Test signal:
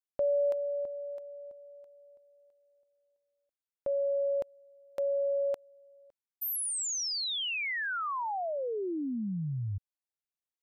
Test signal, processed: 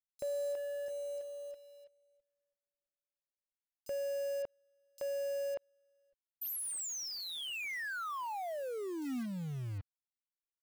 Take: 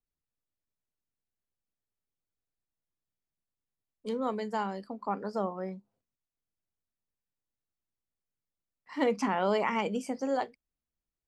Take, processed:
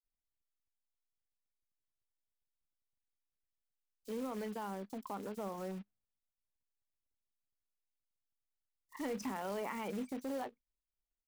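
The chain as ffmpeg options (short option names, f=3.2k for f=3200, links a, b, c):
-filter_complex "[0:a]anlmdn=0.398,adynamicequalizer=threshold=0.00501:dfrequency=250:dqfactor=7.2:tfrequency=250:tqfactor=7.2:attack=5:release=100:ratio=0.375:range=2:mode=boostabove:tftype=bell,acompressor=threshold=-41dB:ratio=3:attack=0.69:release=49:knee=6:detection=rms,acrusher=bits=3:mode=log:mix=0:aa=0.000001,acrossover=split=4200[a][b];[a]adelay=30[c];[c][b]amix=inputs=2:normalize=0,volume=2dB"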